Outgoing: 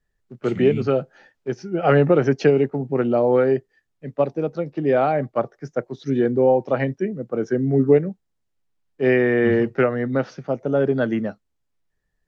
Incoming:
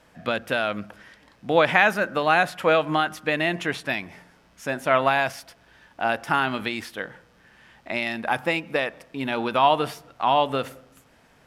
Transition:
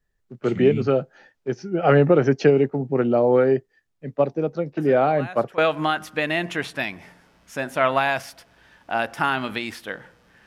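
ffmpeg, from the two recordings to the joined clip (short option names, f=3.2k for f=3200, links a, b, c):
-filter_complex "[1:a]asplit=2[a][b];[0:a]apad=whole_dur=10.46,atrim=end=10.46,atrim=end=5.582[c];[b]atrim=start=2.678:end=7.56[d];[a]atrim=start=1.87:end=2.68,asetpts=PTS-STARTPTS,volume=-17dB,afade=t=in:d=0.004:c=hsin,afade=t=out:st=0.806:d=0.004:c=hsin,adelay=210357S[e];[c][d]acrossfade=d=0.004:c1=hsin:c2=hsin[f];[f][e]amix=inputs=2:normalize=0"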